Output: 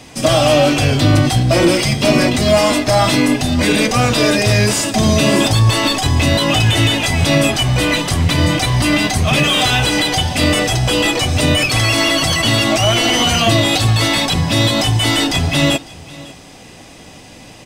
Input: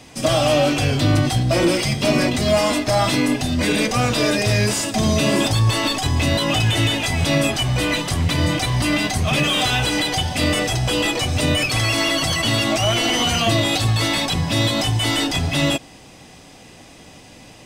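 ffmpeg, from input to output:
-af "aecho=1:1:552:0.0891,volume=5dB"

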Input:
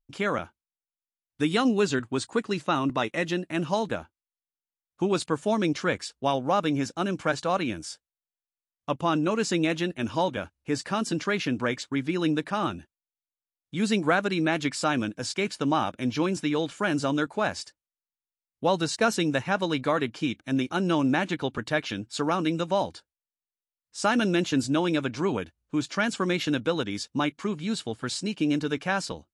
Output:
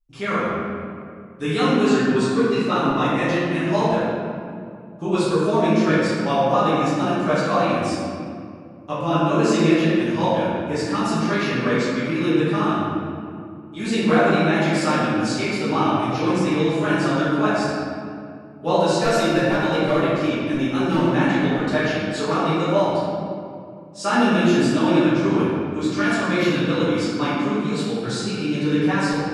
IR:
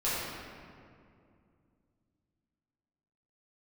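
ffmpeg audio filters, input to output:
-filter_complex "[0:a]flanger=delay=5.6:depth=8.8:regen=-18:speed=1:shape=sinusoidal,asettb=1/sr,asplit=3[a][b][c];[a]atrim=end=18.794[d];[b]atrim=start=18.79:end=21.1,asetpts=PTS-STARTPTS,afade=t=in:d=0.004:c=qsin,afade=t=out:st=2.306:d=0.004:c=qsin,volume=21.5dB,asoftclip=hard,volume=-21.5dB[e];[c]atrim=start=21.096[f];[d][e]acrossfade=d=0.004:c1=hsin:c2=qsin[g];[g][f]acrossfade=d=0.004:c1=qsin:c2=hsin[h];[1:a]atrim=start_sample=2205[i];[h][i]afir=irnorm=-1:irlink=0"

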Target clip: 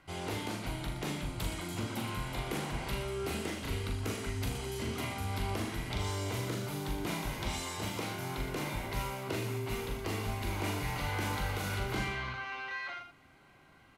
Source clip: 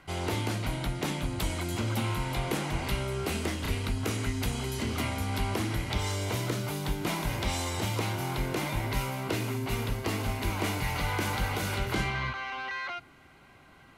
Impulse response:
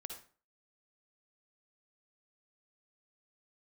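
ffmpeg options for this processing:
-af "aecho=1:1:40.82|78.72|119.5:0.562|0.282|0.282,volume=-6.5dB"

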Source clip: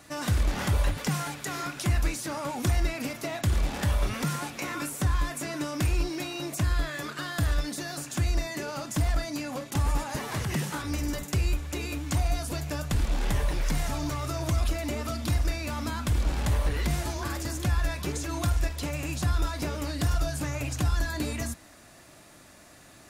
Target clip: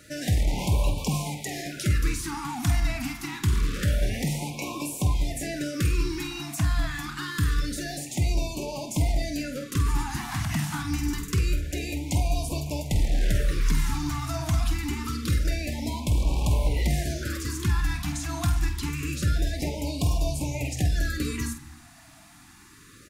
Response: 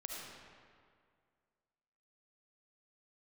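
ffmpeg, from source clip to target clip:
-filter_complex "[0:a]asplit=2[a][b];[b]adelay=48,volume=-9dB[c];[a][c]amix=inputs=2:normalize=0,asplit=2[d][e];[1:a]atrim=start_sample=2205,afade=t=out:st=0.39:d=0.01,atrim=end_sample=17640,lowshelf=f=200:g=10[f];[e][f]afir=irnorm=-1:irlink=0,volume=-13dB[g];[d][g]amix=inputs=2:normalize=0,afftfilt=real='re*(1-between(b*sr/1024,450*pow(1600/450,0.5+0.5*sin(2*PI*0.26*pts/sr))/1.41,450*pow(1600/450,0.5+0.5*sin(2*PI*0.26*pts/sr))*1.41))':imag='im*(1-between(b*sr/1024,450*pow(1600/450,0.5+0.5*sin(2*PI*0.26*pts/sr))/1.41,450*pow(1600/450,0.5+0.5*sin(2*PI*0.26*pts/sr))*1.41))':win_size=1024:overlap=0.75"

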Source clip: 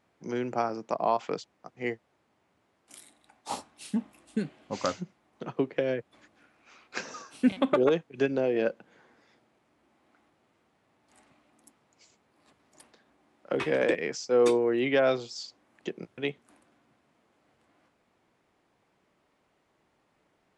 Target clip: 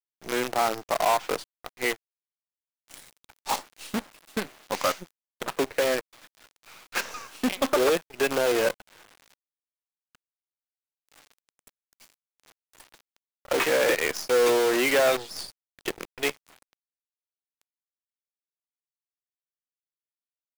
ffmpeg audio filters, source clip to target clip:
-filter_complex "[0:a]asplit=2[a][b];[b]highpass=f=720:p=1,volume=17dB,asoftclip=type=tanh:threshold=-12.5dB[c];[a][c]amix=inputs=2:normalize=0,lowpass=f=3.9k:p=1,volume=-6dB,acrusher=bits=5:dc=4:mix=0:aa=0.000001,lowshelf=f=220:g=-7.5"

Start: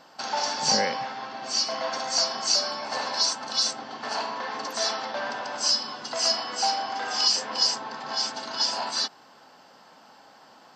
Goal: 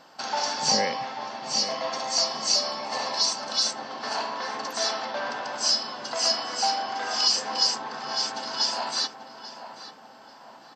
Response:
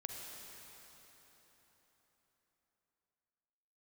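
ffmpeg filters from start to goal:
-filter_complex "[0:a]asettb=1/sr,asplit=3[a][b][c];[a]atrim=end=0.704[d];[b]atrim=start=0.7:end=3.37,asetpts=PTS-STARTPTS,afade=t=in:d=0.004:c=qsin,afade=t=out:st=2.666:d=0.004:c=qsin,bandreject=f=1.5k:w=6[e];[c]atrim=start=3.366[f];[d][e]acrossfade=d=0.004:c1=hsin:c2=qsin[g];[g][f]acrossfade=d=0.004:c1=qsin:c2=hsin,asplit=2[h][i];[i]adelay=838,lowpass=f=2.1k:p=1,volume=-10dB,asplit=2[j][k];[k]adelay=838,lowpass=f=2.1k:p=1,volume=0.47,asplit=2[l][m];[m]adelay=838,lowpass=f=2.1k:p=1,volume=0.47,asplit=2[n][o];[o]adelay=838,lowpass=f=2.1k:p=1,volume=0.47,asplit=2[p][q];[q]adelay=838,lowpass=f=2.1k:p=1,volume=0.47[r];[h][j][l][n][p][r]amix=inputs=6:normalize=0"

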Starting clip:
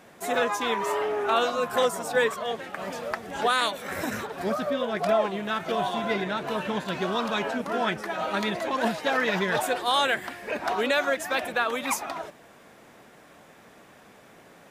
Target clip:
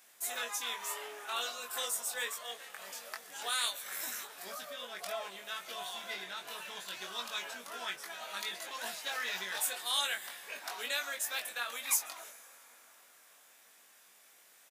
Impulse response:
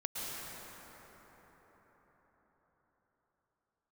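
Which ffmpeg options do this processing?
-filter_complex "[0:a]aderivative,asplit=2[a][b];[b]adelay=21,volume=-4dB[c];[a][c]amix=inputs=2:normalize=0,asplit=2[d][e];[1:a]atrim=start_sample=2205,adelay=141[f];[e][f]afir=irnorm=-1:irlink=0,volume=-20.5dB[g];[d][g]amix=inputs=2:normalize=0"

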